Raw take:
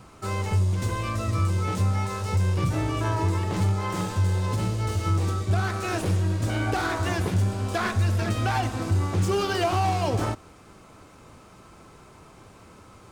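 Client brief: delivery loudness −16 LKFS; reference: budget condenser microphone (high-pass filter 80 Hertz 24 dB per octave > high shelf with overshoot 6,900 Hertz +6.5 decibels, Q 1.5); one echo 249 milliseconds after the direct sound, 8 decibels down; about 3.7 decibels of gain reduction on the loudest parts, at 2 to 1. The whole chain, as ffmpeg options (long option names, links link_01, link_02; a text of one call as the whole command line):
ffmpeg -i in.wav -af "acompressor=threshold=-25dB:ratio=2,highpass=frequency=80:width=0.5412,highpass=frequency=80:width=1.3066,highshelf=frequency=6900:width_type=q:width=1.5:gain=6.5,aecho=1:1:249:0.398,volume=12dB" out.wav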